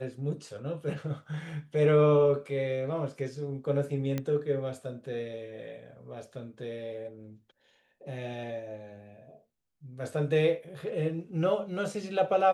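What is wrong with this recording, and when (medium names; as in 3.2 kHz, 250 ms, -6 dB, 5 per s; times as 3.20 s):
4.18 s: pop -18 dBFS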